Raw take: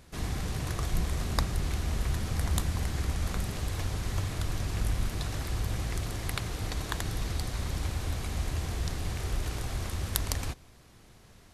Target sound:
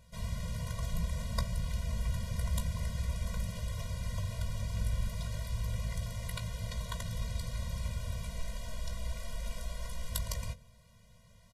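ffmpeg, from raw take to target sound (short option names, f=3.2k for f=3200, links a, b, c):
-filter_complex "[0:a]asettb=1/sr,asplit=3[a][b][c];[a]atrim=end=8.294[d];[b]atrim=start=8.29:end=10.11,asetpts=PTS-STARTPTS,afade=t=in:d=0.004:c=qsin,afade=t=out:st=1.816:d=0.004:c=qsin,afreqshift=-80[e];[c]atrim=start=10.106[f];[d][e]acrossfade=d=0.004:c1=hsin:c2=qsin[g];[g][f]acrossfade=d=0.004:c1=qsin:c2=hsin,bandreject=f=1.6k:w=10,bandreject=f=45.55:t=h:w=4,bandreject=f=91.1:t=h:w=4,bandreject=f=136.65:t=h:w=4,bandreject=f=182.2:t=h:w=4,bandreject=f=227.75:t=h:w=4,bandreject=f=273.3:t=h:w=4,bandreject=f=318.85:t=h:w=4,bandreject=f=364.4:t=h:w=4,bandreject=f=409.95:t=h:w=4,bandreject=f=455.5:t=h:w=4,bandreject=f=501.05:t=h:w=4,bandreject=f=546.6:t=h:w=4,bandreject=f=592.15:t=h:w=4,asettb=1/sr,asplit=3[h][i][j];[h]atrim=end=3.224[k];[i]atrim=start=3.22:end=3.83,asetpts=PTS-STARTPTS,afade=t=in:d=0.004:c=qsin,afade=t=out:st=0.606:d=0.004:c=qsin,aeval=exprs='clip(val(0),-1,0.0562)':c=same[l];[j]atrim=start=3.826[m];[k][l]acrossfade=d=0.004:c1=hsin:c2=qsin[n];[n][m]acrossfade=d=0.004:c1=qsin:c2=hsin,asplit=2[o][p];[p]adelay=18,volume=-10.5dB[q];[o][q]amix=inputs=2:normalize=0,afftfilt=real='re*eq(mod(floor(b*sr/1024/230),2),0)':imag='im*eq(mod(floor(b*sr/1024/230),2),0)':win_size=1024:overlap=0.75,volume=-3.5dB"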